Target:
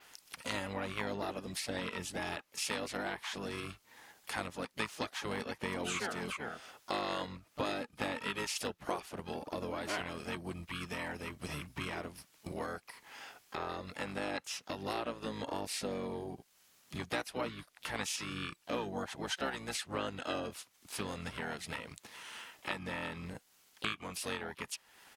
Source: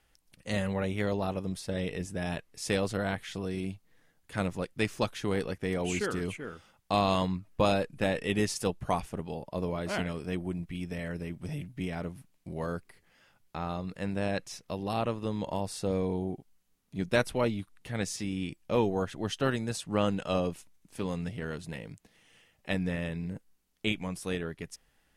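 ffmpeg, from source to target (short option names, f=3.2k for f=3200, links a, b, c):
-filter_complex "[0:a]highpass=f=1.1k:p=1,adynamicequalizer=threshold=0.00126:dfrequency=9300:dqfactor=1.2:tfrequency=9300:tqfactor=1.2:attack=5:release=100:ratio=0.375:range=2.5:mode=cutabove:tftype=bell,asplit=2[a][b];[b]alimiter=limit=-22dB:level=0:latency=1:release=406,volume=1.5dB[c];[a][c]amix=inputs=2:normalize=0,acompressor=threshold=-51dB:ratio=2.5,asplit=3[d][e][f];[e]asetrate=22050,aresample=44100,atempo=2,volume=-3dB[g];[f]asetrate=55563,aresample=44100,atempo=0.793701,volume=-11dB[h];[d][g][h]amix=inputs=3:normalize=0,volume=7dB"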